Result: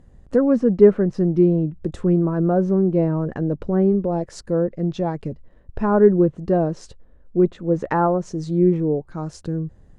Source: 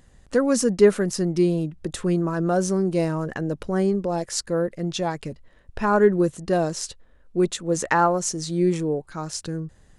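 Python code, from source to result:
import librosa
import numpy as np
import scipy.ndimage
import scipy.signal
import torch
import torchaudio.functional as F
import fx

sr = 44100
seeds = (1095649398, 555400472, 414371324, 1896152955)

y = fx.tilt_shelf(x, sr, db=9.0, hz=1200.0)
y = fx.env_lowpass_down(y, sr, base_hz=2500.0, full_db=-11.5)
y = F.gain(torch.from_numpy(y), -3.5).numpy()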